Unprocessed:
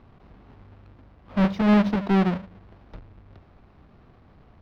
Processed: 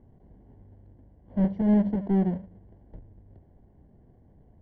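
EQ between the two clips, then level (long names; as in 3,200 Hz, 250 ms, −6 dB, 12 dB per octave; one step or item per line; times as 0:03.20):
moving average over 35 samples
−2.5 dB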